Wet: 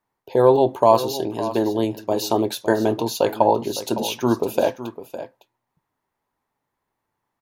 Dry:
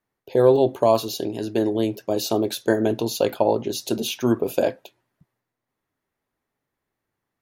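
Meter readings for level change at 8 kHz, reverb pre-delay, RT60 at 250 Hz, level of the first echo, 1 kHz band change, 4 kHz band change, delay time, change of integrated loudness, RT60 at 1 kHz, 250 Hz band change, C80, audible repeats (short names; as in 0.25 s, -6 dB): 0.0 dB, none, none, -13.0 dB, +6.5 dB, +0.5 dB, 0.559 s, +1.5 dB, none, +0.5 dB, none, 1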